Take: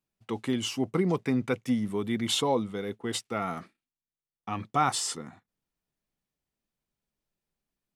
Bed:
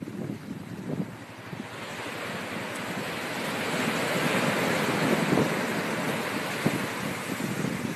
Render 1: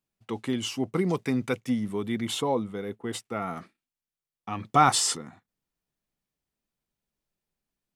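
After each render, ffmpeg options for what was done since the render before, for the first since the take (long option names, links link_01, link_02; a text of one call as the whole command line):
ffmpeg -i in.wav -filter_complex "[0:a]asettb=1/sr,asplit=3[link_01][link_02][link_03];[link_01]atrim=end=0.964[link_04];[link_02]atrim=start=0.96:end=1.6,asetpts=PTS-STARTPTS,afade=type=in:duration=0.004:curve=qsin,afade=type=out:start_time=0.636:duration=0.004:curve=qsin,highshelf=frequency=4100:gain=7.5[link_05];[link_03]atrim=start=1.596[link_06];[link_04][link_05]acrossfade=duration=0.004:curve1=hsin:curve2=qsin[link_07];[link_07][link_06]acrossfade=duration=0.004:curve1=qsin:curve2=hsin,asettb=1/sr,asplit=3[link_08][link_09][link_10];[link_08]atrim=end=2.254[link_11];[link_09]atrim=start=2.25:end=3.56,asetpts=PTS-STARTPTS,afade=type=in:duration=0.004:curve=qsin,afade=type=out:start_time=1.306:duration=0.004:curve=qsin,equalizer=frequency=4600:width_type=o:width=1.8:gain=-5.5[link_12];[link_10]atrim=start=3.556[link_13];[link_11][link_12]acrossfade=duration=0.004:curve1=hsin:curve2=qsin[link_14];[link_14][link_13]acrossfade=duration=0.004:curve1=qsin:curve2=hsin,asplit=3[link_15][link_16][link_17];[link_15]afade=type=out:start_time=4.64:duration=0.02[link_18];[link_16]acontrast=54,afade=type=in:start_time=4.64:duration=0.02,afade=type=out:start_time=5.16:duration=0.02[link_19];[link_17]afade=type=in:start_time=5.16:duration=0.02[link_20];[link_18][link_19][link_20]amix=inputs=3:normalize=0" out.wav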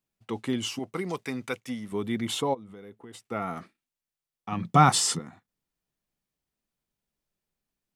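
ffmpeg -i in.wav -filter_complex "[0:a]asettb=1/sr,asplit=3[link_01][link_02][link_03];[link_01]atrim=end=0.794[link_04];[link_02]atrim=start=0.79:end=1.92,asetpts=PTS-STARTPTS,afade=type=in:duration=0.004:curve=qsin,afade=type=out:start_time=1.126:duration=0.004:curve=qsin,lowshelf=frequency=450:gain=-10[link_05];[link_03]atrim=start=1.916[link_06];[link_04][link_05]acrossfade=duration=0.004:curve1=hsin:curve2=qsin[link_07];[link_07][link_06]acrossfade=duration=0.004:curve1=qsin:curve2=hsin,asplit=3[link_08][link_09][link_10];[link_08]afade=type=out:start_time=2.53:duration=0.02[link_11];[link_09]acompressor=threshold=-43dB:ratio=5:attack=3.2:release=140:knee=1:detection=peak,afade=type=in:start_time=2.53:duration=0.02,afade=type=out:start_time=3.21:duration=0.02[link_12];[link_10]afade=type=in:start_time=3.21:duration=0.02[link_13];[link_11][link_12][link_13]amix=inputs=3:normalize=0,asettb=1/sr,asplit=3[link_14][link_15][link_16];[link_14]atrim=end=4.524[link_17];[link_15]atrim=start=4.52:end=5.19,asetpts=PTS-STARTPTS,afade=type=in:duration=0.004:curve=qsin,afade=type=out:start_time=0.666:duration=0.004:curve=qsin,equalizer=frequency=170:width=2.9:gain=15[link_18];[link_16]atrim=start=5.186[link_19];[link_17][link_18]acrossfade=duration=0.004:curve1=hsin:curve2=qsin[link_20];[link_20][link_19]acrossfade=duration=0.004:curve1=qsin:curve2=hsin" out.wav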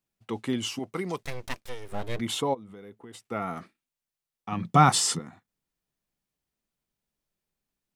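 ffmpeg -i in.wav -filter_complex "[0:a]asplit=3[link_01][link_02][link_03];[link_01]afade=type=out:start_time=1.22:duration=0.02[link_04];[link_02]aeval=exprs='abs(val(0))':channel_layout=same,afade=type=in:start_time=1.22:duration=0.02,afade=type=out:start_time=2.18:duration=0.02[link_05];[link_03]afade=type=in:start_time=2.18:duration=0.02[link_06];[link_04][link_05][link_06]amix=inputs=3:normalize=0" out.wav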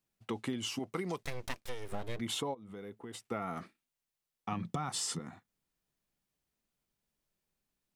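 ffmpeg -i in.wav -af "alimiter=limit=-17.5dB:level=0:latency=1:release=249,acompressor=threshold=-33dB:ratio=6" out.wav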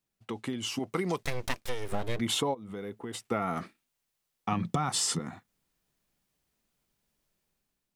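ffmpeg -i in.wav -af "dynaudnorm=framelen=300:gausssize=5:maxgain=7dB" out.wav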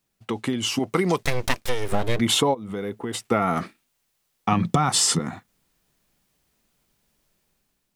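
ffmpeg -i in.wav -af "volume=9dB" out.wav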